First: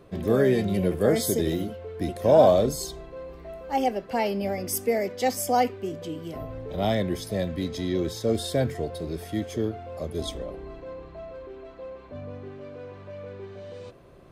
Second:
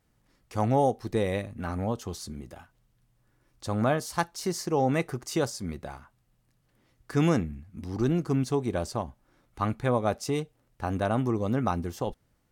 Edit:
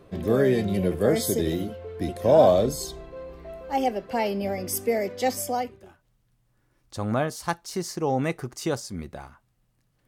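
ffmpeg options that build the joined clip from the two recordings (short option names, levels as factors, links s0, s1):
-filter_complex "[0:a]apad=whole_dur=10.07,atrim=end=10.07,atrim=end=6.08,asetpts=PTS-STARTPTS[s0];[1:a]atrim=start=2.08:end=6.77,asetpts=PTS-STARTPTS[s1];[s0][s1]acrossfade=d=0.7:c1=qua:c2=qua"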